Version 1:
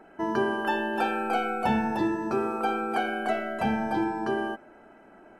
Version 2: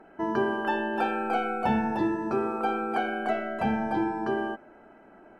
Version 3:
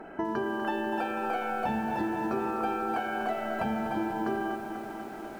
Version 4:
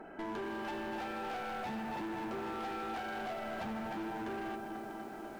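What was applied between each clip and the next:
treble shelf 4.3 kHz -10 dB
compression 5:1, threshold -38 dBFS, peak gain reduction 15.5 dB; bit-crushed delay 246 ms, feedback 80%, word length 10-bit, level -9 dB; trim +8 dB
hard clipper -32 dBFS, distortion -9 dB; trim -5 dB

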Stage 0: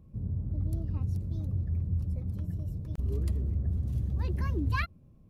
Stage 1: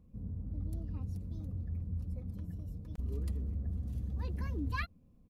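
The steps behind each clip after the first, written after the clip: comb 4.1 ms, depth 46%; trim -6 dB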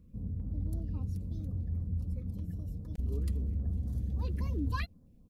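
step-sequenced notch 7.5 Hz 820–2600 Hz; trim +3.5 dB

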